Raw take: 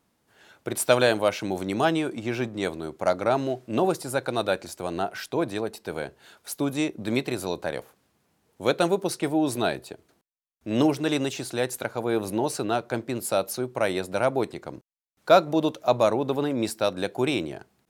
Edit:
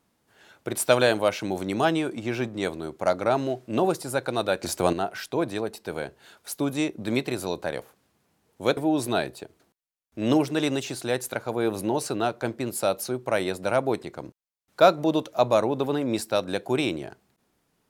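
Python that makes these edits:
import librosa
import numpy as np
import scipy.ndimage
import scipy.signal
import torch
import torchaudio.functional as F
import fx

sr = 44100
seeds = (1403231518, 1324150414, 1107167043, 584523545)

y = fx.edit(x, sr, fx.clip_gain(start_s=4.63, length_s=0.3, db=9.0),
    fx.cut(start_s=8.77, length_s=0.49), tone=tone)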